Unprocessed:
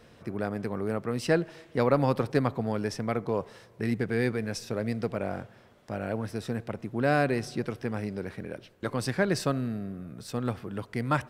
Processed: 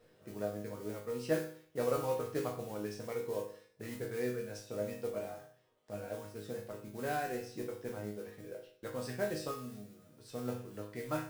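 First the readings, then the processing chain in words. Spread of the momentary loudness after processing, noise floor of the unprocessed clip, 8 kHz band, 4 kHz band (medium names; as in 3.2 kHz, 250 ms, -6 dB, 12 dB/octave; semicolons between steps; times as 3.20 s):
12 LU, -56 dBFS, -6.5 dB, -10.0 dB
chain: reverb removal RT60 0.78 s; modulation noise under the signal 14 dB; peaking EQ 500 Hz +7.5 dB 0.77 oct; hum notches 60/120 Hz; chord resonator G#2 minor, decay 0.53 s; trim +4.5 dB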